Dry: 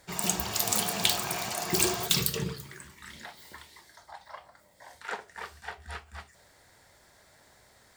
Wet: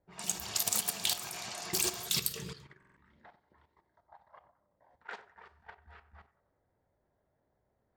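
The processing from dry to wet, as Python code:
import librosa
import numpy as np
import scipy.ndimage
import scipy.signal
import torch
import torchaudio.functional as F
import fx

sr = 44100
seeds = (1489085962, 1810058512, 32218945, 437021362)

p1 = fx.env_lowpass(x, sr, base_hz=540.0, full_db=-27.0)
p2 = fx.high_shelf(p1, sr, hz=2400.0, db=9.0)
p3 = fx.level_steps(p2, sr, step_db=12)
p4 = p3 + fx.echo_banded(p3, sr, ms=93, feedback_pct=54, hz=1100.0, wet_db=-16.5, dry=0)
p5 = fx.buffer_glitch(p4, sr, at_s=(2.78,), block=2048, repeats=3)
y = F.gain(torch.from_numpy(p5), -6.0).numpy()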